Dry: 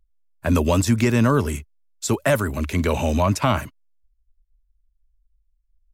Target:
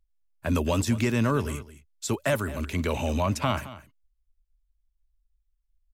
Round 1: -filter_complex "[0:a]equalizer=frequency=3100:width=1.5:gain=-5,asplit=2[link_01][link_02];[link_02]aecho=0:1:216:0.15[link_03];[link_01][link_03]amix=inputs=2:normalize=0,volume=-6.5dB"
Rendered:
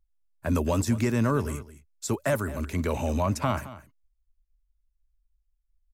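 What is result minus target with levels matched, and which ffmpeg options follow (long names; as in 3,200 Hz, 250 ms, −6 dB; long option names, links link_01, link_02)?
4,000 Hz band −5.5 dB
-filter_complex "[0:a]equalizer=frequency=3100:width=1.5:gain=3,asplit=2[link_01][link_02];[link_02]aecho=0:1:216:0.15[link_03];[link_01][link_03]amix=inputs=2:normalize=0,volume=-6.5dB"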